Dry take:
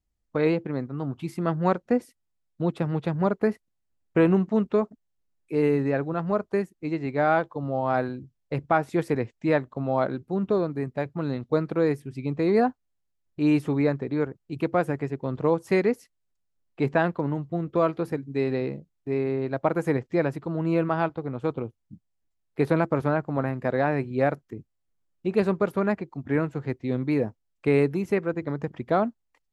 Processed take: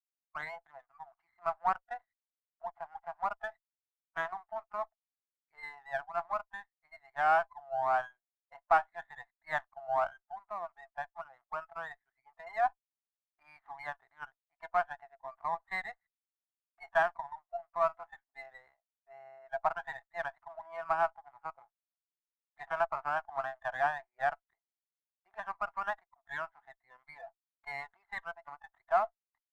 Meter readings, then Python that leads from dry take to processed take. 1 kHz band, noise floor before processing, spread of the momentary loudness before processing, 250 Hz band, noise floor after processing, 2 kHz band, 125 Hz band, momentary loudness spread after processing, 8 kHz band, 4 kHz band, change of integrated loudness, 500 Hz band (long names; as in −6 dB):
−2.5 dB, −76 dBFS, 9 LU, −37.5 dB, below −85 dBFS, −3.5 dB, −33.5 dB, 19 LU, can't be measured, −9.0 dB, −9.5 dB, −14.0 dB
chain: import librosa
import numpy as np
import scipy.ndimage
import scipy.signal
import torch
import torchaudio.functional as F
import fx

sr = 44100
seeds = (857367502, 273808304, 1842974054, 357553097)

y = scipy.signal.sosfilt(scipy.signal.cheby1(5, 1.0, [670.0, 2100.0], 'bandpass', fs=sr, output='sos'), x)
y = fx.noise_reduce_blind(y, sr, reduce_db=16)
y = fx.running_max(y, sr, window=3)
y = y * 10.0 ** (-1.5 / 20.0)